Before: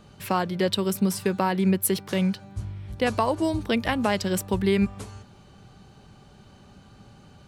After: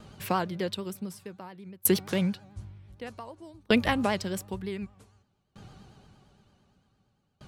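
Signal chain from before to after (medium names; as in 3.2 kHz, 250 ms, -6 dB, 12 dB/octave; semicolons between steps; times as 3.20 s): vibrato 8.8 Hz 85 cents; sawtooth tremolo in dB decaying 0.54 Hz, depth 29 dB; trim +2.5 dB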